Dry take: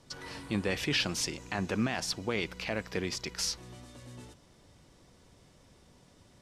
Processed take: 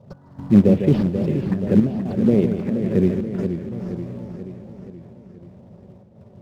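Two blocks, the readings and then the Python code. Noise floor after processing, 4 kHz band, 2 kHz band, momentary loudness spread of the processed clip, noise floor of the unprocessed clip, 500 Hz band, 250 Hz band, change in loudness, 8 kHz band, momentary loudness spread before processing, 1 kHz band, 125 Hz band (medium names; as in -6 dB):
-48 dBFS, under -10 dB, -7.0 dB, 20 LU, -61 dBFS, +14.5 dB, +19.0 dB, +13.5 dB, under -15 dB, 20 LU, +1.0 dB, +18.0 dB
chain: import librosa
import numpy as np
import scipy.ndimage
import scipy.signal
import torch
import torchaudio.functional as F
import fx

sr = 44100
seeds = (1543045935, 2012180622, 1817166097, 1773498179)

p1 = scipy.signal.sosfilt(scipy.signal.butter(4, 89.0, 'highpass', fs=sr, output='sos'), x)
p2 = fx.echo_feedback(p1, sr, ms=409, feedback_pct=34, wet_db=-14.0)
p3 = fx.env_phaser(p2, sr, low_hz=300.0, high_hz=3800.0, full_db=-23.0)
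p4 = fx.sample_hold(p3, sr, seeds[0], rate_hz=5700.0, jitter_pct=0)
p5 = p3 + F.gain(torch.from_numpy(p4), -6.0).numpy()
p6 = fx.riaa(p5, sr, side='playback')
p7 = p6 + fx.echo_single(p6, sr, ms=152, db=-8.5, dry=0)
p8 = fx.quant_float(p7, sr, bits=2)
p9 = fx.small_body(p8, sr, hz=(220.0, 390.0, 550.0), ring_ms=25, db=14)
p10 = fx.step_gate(p9, sr, bpm=117, pattern='x..xxxxx.xxx.', floor_db=-12.0, edge_ms=4.5)
p11 = fx.high_shelf(p10, sr, hz=6400.0, db=-12.0)
p12 = fx.echo_warbled(p11, sr, ms=479, feedback_pct=57, rate_hz=2.8, cents=128, wet_db=-9)
y = F.gain(torch.from_numpy(p12), -3.5).numpy()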